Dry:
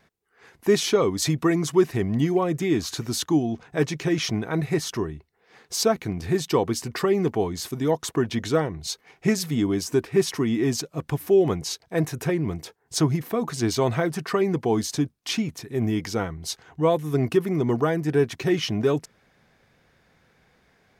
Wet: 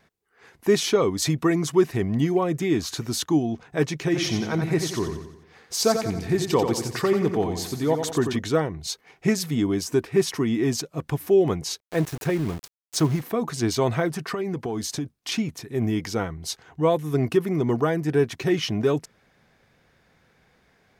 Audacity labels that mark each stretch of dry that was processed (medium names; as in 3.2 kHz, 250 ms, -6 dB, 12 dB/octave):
4.030000	8.370000	feedback delay 89 ms, feedback 47%, level -7 dB
11.800000	13.210000	small samples zeroed under -33.5 dBFS
14.080000	15.320000	compression, threshold -24 dBFS